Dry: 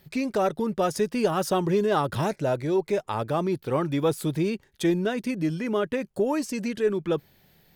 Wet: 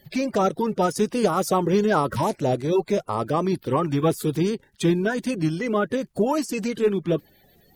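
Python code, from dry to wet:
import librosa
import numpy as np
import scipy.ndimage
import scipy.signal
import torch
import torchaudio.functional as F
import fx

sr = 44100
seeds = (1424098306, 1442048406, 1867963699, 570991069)

y = fx.spec_quant(x, sr, step_db=30)
y = F.gain(torch.from_numpy(y), 3.5).numpy()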